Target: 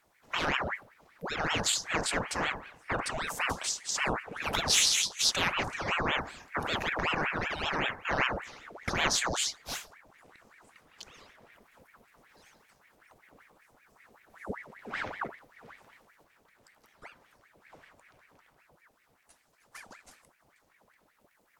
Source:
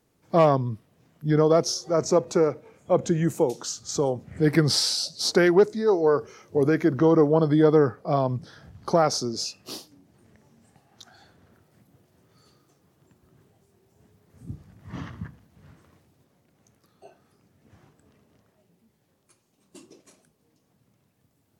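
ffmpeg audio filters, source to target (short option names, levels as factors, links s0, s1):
-af "afftfilt=real='re*lt(hypot(re,im),0.355)':imag='im*lt(hypot(re,im),0.355)':win_size=1024:overlap=0.75,bandreject=f=70:t=h:w=4,bandreject=f=140:t=h:w=4,bandreject=f=210:t=h:w=4,bandreject=f=280:t=h:w=4,bandreject=f=350:t=h:w=4,bandreject=f=420:t=h:w=4,bandreject=f=490:t=h:w=4,bandreject=f=560:t=h:w=4,bandreject=f=630:t=h:w=4,bandreject=f=700:t=h:w=4,bandreject=f=770:t=h:w=4,bandreject=f=840:t=h:w=4,bandreject=f=910:t=h:w=4,bandreject=f=980:t=h:w=4,bandreject=f=1050:t=h:w=4,bandreject=f=1120:t=h:w=4,bandreject=f=1190:t=h:w=4,bandreject=f=1260:t=h:w=4,bandreject=f=1330:t=h:w=4,bandreject=f=1400:t=h:w=4,aeval=exprs='val(0)*sin(2*PI*1200*n/s+1200*0.75/5.2*sin(2*PI*5.2*n/s))':c=same,volume=1.41"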